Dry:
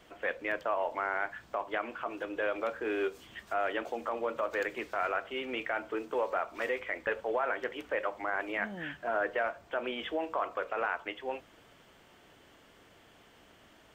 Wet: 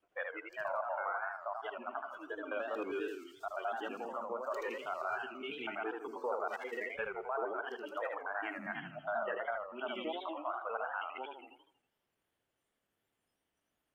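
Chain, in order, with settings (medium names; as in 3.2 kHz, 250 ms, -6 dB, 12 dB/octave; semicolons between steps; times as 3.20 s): slices played last to first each 81 ms, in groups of 2; spectral noise reduction 22 dB; modulated delay 81 ms, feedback 46%, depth 201 cents, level -4 dB; trim -5.5 dB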